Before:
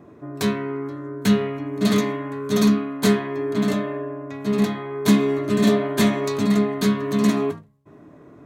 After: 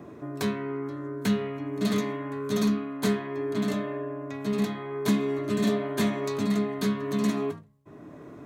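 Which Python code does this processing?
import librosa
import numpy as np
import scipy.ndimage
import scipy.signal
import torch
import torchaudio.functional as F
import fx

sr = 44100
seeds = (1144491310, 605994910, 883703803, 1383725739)

y = fx.band_squash(x, sr, depth_pct=40)
y = y * 10.0 ** (-7.0 / 20.0)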